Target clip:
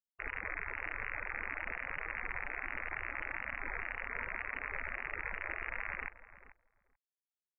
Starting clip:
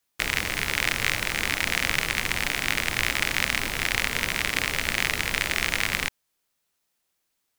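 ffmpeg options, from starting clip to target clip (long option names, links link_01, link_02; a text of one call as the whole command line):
ffmpeg -i in.wav -filter_complex "[0:a]lowpass=frequency=2100:width=0.5412,lowpass=frequency=2100:width=1.3066,equalizer=frequency=130:width=0.44:gain=-11.5,afftfilt=real='re*gte(hypot(re,im),0.0282)':imag='im*gte(hypot(re,im),0.0282)':win_size=1024:overlap=0.75,alimiter=limit=-20.5dB:level=0:latency=1:release=50,asplit=2[link_01][link_02];[link_02]adelay=436,lowpass=frequency=1000:poles=1,volume=-12dB,asplit=2[link_03][link_04];[link_04]adelay=436,lowpass=frequency=1000:poles=1,volume=0.16[link_05];[link_03][link_05]amix=inputs=2:normalize=0[link_06];[link_01][link_06]amix=inputs=2:normalize=0,volume=-4dB" out.wav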